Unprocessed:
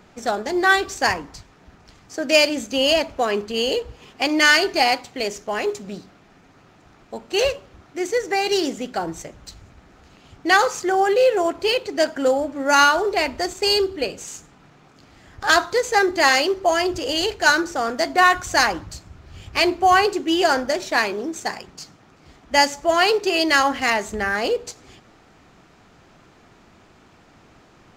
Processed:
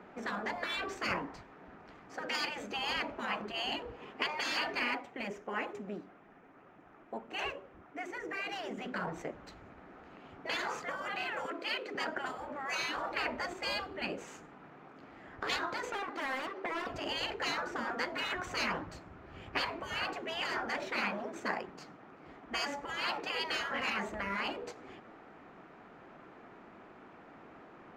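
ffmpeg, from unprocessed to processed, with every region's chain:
ffmpeg -i in.wav -filter_complex "[0:a]asettb=1/sr,asplit=3[link_01][link_02][link_03];[link_01]atrim=end=4.794[link_04];[link_02]atrim=start=4.79:end=8.78,asetpts=PTS-STARTPTS,afade=type=in:duration=0.004:curve=qsin,afade=type=out:start_time=3.986:duration=0.004:curve=qsin,equalizer=frequency=4300:width_type=o:width=0.46:gain=-6,flanger=delay=0.1:depth=3.5:regen=68:speed=2:shape=triangular[link_05];[link_03]atrim=start=8.776[link_06];[link_04][link_05]acrossfade=duration=0.004:curve1=hsin:curve2=qsin[link_07];[link_07][link_06]acrossfade=duration=0.004:curve1=qsin:curve2=hsin,asettb=1/sr,asplit=3[link_08][link_09][link_10];[link_08]atrim=end=11.454[link_11];[link_09]atrim=start=11.45:end=11.95,asetpts=PTS-STARTPTS,afade=type=in:duration=0.004:curve=qsin,afade=type=out:start_time=0.496:duration=0.004:curve=qsin,highpass=frequency=230:width=0.5412,highpass=frequency=230:width=1.3066,equalizer=frequency=850:width=3.7:gain=-13[link_12];[link_10]atrim=start=11.946[link_13];[link_11][link_12]acrossfade=duration=0.004:curve1=hsin:curve2=qsin[link_14];[link_14][link_13]acrossfade=duration=0.004:curve1=qsin:curve2=hsin,asettb=1/sr,asplit=3[link_15][link_16][link_17];[link_15]atrim=end=15.904[link_18];[link_16]atrim=start=15.9:end=16.87,asetpts=PTS-STARTPTS,afade=type=in:duration=0.004:curve=qsin,afade=type=out:start_time=0.966:duration=0.004:curve=qsin,highpass=310,lowpass=6500,acompressor=threshold=-24dB:ratio=4:attack=3.2:release=140:knee=1:detection=peak,aeval=exprs='0.0447*(abs(mod(val(0)/0.0447+3,4)-2)-1)':channel_layout=same[link_19];[link_17]atrim=start=16.866[link_20];[link_18][link_19]acrossfade=duration=0.004:curve1=hsin:curve2=qsin[link_21];[link_21][link_20]acrossfade=duration=0.004:curve1=qsin:curve2=hsin,acrossover=split=190 2400:gain=0.178 1 0.0794[link_22][link_23][link_24];[link_22][link_23][link_24]amix=inputs=3:normalize=0,afftfilt=real='re*lt(hypot(re,im),0.141)':imag='im*lt(hypot(re,im),0.141)':win_size=1024:overlap=0.75" out.wav

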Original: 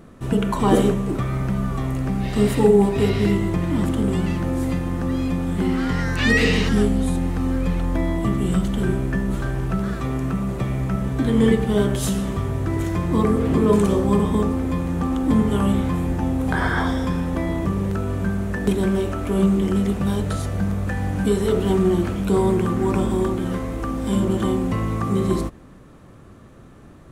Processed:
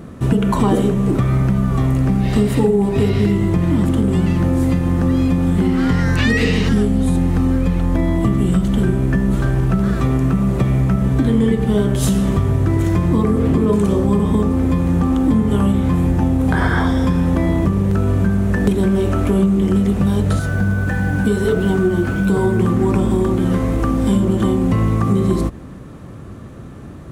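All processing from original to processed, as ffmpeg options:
ffmpeg -i in.wav -filter_complex "[0:a]asettb=1/sr,asplit=3[link_01][link_02][link_03];[link_01]atrim=end=20.394[link_04];[link_02]atrim=start=20.39:end=22.6,asetpts=PTS-STARTPTS,afade=type=in:duration=0.004:curve=qsin,afade=type=out:start_time=2.206:duration=0.004:curve=qsin,flanger=delay=5.3:depth=4:regen=48:speed=1.6:shape=triangular,acrusher=bits=8:mix=0:aa=0.5,aeval=exprs='val(0)+0.02*sin(2*PI*1500*n/s)':channel_layout=same[link_05];[link_03]atrim=start=22.596[link_06];[link_04][link_05]acrossfade=duration=0.004:curve1=hsin:curve2=qsin[link_07];[link_07][link_06]acrossfade=duration=0.004:curve1=qsin:curve2=hsin,highpass=51,lowshelf=frequency=290:gain=6.5,acompressor=threshold=-19dB:ratio=6,volume=7dB" out.wav

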